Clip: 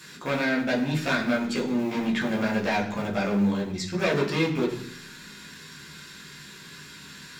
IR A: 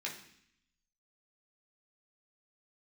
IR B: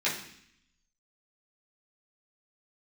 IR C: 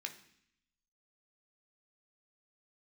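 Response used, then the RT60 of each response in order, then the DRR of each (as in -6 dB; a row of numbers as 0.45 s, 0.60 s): A; 0.65 s, 0.65 s, 0.65 s; -4.0 dB, -10.0 dB, 3.5 dB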